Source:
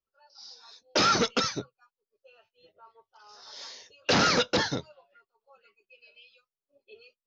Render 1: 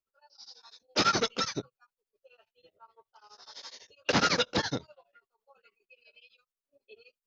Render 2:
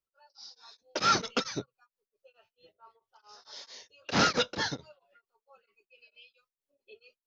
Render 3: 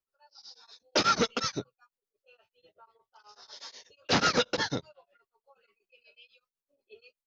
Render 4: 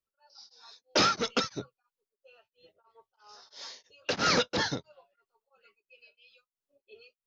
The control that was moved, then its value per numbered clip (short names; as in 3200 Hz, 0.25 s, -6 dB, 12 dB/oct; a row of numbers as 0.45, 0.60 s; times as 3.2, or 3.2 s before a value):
beating tremolo, nulls at: 12, 4.5, 8.2, 3 Hz